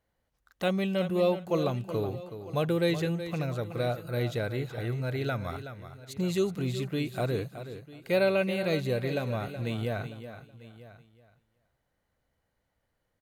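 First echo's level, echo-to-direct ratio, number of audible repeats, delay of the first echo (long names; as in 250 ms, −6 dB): −11.0 dB, −10.0 dB, 4, 373 ms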